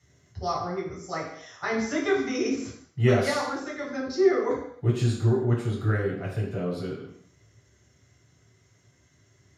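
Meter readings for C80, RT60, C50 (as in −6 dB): 7.0 dB, non-exponential decay, 3.5 dB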